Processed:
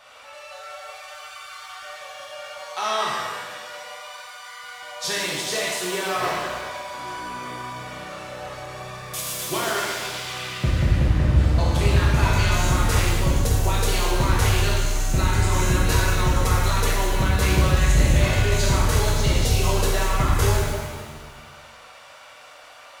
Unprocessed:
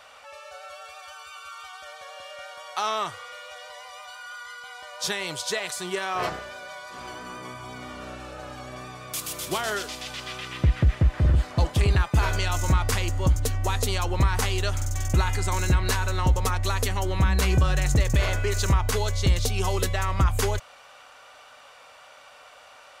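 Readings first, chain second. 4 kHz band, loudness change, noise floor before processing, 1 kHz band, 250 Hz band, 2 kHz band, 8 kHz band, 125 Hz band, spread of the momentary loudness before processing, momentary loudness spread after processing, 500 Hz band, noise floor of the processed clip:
+4.5 dB, +3.0 dB, -50 dBFS, +4.0 dB, +4.5 dB, +4.5 dB, +4.5 dB, +3.0 dB, 18 LU, 18 LU, +4.0 dB, -45 dBFS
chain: shimmer reverb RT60 1.5 s, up +7 st, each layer -8 dB, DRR -5 dB; gain -2.5 dB

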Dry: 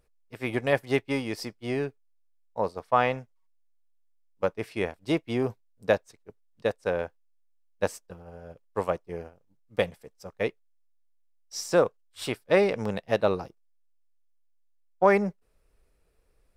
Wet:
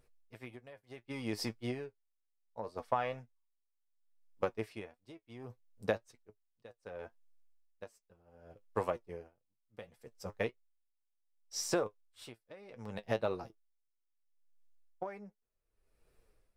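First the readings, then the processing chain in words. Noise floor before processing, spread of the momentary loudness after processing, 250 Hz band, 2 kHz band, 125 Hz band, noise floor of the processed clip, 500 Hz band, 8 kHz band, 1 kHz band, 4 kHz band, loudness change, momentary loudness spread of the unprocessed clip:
-67 dBFS, 19 LU, -12.5 dB, -13.5 dB, -11.0 dB, -82 dBFS, -13.0 dB, -3.5 dB, -11.5 dB, -8.5 dB, -11.5 dB, 16 LU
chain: flange 1.8 Hz, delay 7.8 ms, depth 2.1 ms, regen +44%; compressor 10:1, threshold -32 dBFS, peak gain reduction 14 dB; dB-linear tremolo 0.68 Hz, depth 21 dB; gain +3.5 dB

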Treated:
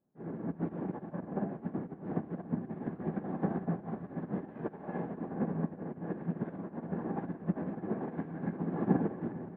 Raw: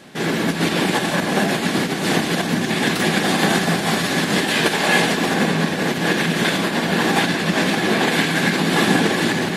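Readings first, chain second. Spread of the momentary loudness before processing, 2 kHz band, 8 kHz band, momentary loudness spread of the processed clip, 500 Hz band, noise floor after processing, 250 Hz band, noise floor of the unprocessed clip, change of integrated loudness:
4 LU, -34.5 dB, under -40 dB, 6 LU, -18.0 dB, -51 dBFS, -15.0 dB, -24 dBFS, -19.0 dB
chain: Bessel low-pass 770 Hz, order 4; low shelf 160 Hz +6.5 dB; upward expander 2.5:1, over -31 dBFS; gain -9 dB

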